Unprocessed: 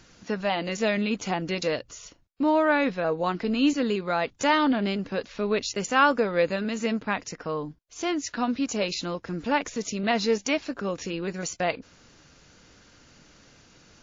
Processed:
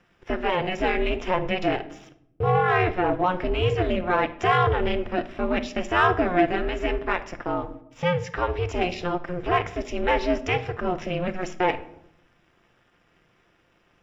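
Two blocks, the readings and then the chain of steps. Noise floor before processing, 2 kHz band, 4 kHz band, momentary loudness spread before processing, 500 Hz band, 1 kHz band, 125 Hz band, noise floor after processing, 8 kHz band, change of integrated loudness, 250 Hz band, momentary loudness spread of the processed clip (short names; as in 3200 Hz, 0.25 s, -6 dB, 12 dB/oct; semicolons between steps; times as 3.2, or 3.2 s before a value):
-58 dBFS, +2.0 dB, -1.5 dB, 11 LU, +2.5 dB, +4.0 dB, +8.0 dB, -64 dBFS, n/a, +1.5 dB, -2.5 dB, 9 LU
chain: low shelf 350 Hz -3.5 dB; notches 60/120/180/240/300 Hz; sample leveller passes 2; bit-crush 10-bit; polynomial smoothing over 25 samples; ring modulator 180 Hz; shoebox room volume 1900 m³, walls furnished, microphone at 0.85 m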